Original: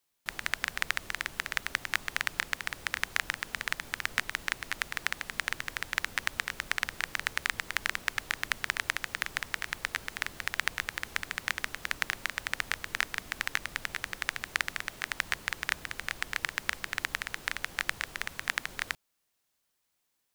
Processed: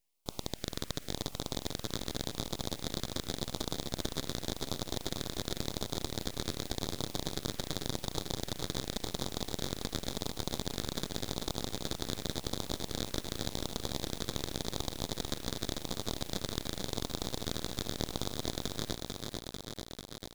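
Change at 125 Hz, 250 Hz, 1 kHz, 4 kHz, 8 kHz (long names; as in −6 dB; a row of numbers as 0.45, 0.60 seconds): +11.5, +13.5, −4.5, −0.5, +0.5 decibels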